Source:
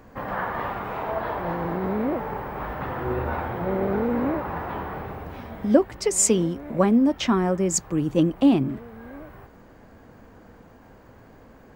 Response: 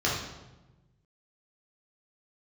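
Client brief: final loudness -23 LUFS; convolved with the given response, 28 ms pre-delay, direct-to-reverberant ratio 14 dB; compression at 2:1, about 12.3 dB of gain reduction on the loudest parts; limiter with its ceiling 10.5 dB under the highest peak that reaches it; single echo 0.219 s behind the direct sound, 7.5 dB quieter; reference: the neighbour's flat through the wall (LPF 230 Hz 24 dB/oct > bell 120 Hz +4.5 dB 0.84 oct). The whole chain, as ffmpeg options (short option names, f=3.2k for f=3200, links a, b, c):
-filter_complex "[0:a]acompressor=threshold=-34dB:ratio=2,alimiter=level_in=2.5dB:limit=-24dB:level=0:latency=1,volume=-2.5dB,aecho=1:1:219:0.422,asplit=2[a][b];[1:a]atrim=start_sample=2205,adelay=28[c];[b][c]afir=irnorm=-1:irlink=0,volume=-26dB[d];[a][d]amix=inputs=2:normalize=0,lowpass=f=230:w=0.5412,lowpass=f=230:w=1.3066,equalizer=f=120:t=o:w=0.84:g=4.5,volume=16.5dB"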